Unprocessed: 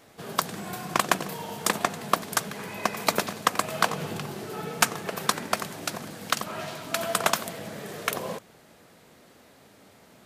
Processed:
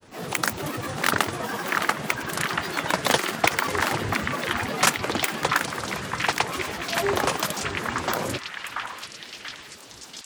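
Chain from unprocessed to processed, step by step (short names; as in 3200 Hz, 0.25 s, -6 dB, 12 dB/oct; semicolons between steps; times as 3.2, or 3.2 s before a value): grains, grains 20/s, pitch spread up and down by 12 st; transient shaper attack -8 dB, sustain -3 dB; delay with a stepping band-pass 0.685 s, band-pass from 1400 Hz, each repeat 0.7 oct, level 0 dB; gain +7.5 dB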